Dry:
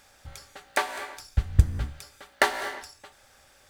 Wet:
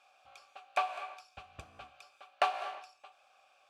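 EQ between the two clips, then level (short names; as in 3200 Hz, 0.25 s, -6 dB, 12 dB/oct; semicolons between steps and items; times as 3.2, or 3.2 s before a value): vowel filter a; tilt shelf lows -6 dB, about 1100 Hz; +4.5 dB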